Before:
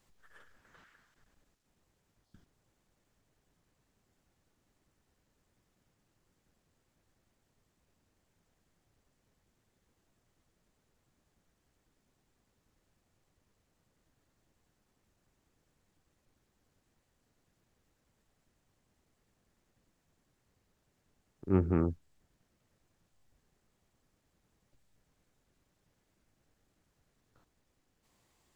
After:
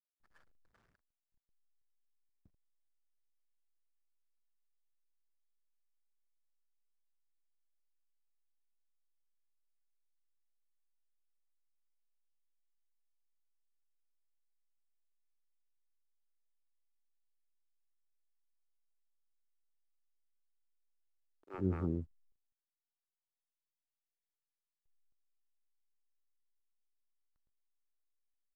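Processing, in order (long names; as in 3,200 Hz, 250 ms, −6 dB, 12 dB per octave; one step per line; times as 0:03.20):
multiband delay without the direct sound highs, lows 110 ms, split 510 Hz
slack as between gear wheels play −54.5 dBFS
level −6 dB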